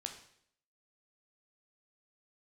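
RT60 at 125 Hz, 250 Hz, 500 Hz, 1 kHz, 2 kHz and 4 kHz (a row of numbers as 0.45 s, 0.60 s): 0.65 s, 0.70 s, 0.70 s, 0.60 s, 0.65 s, 0.65 s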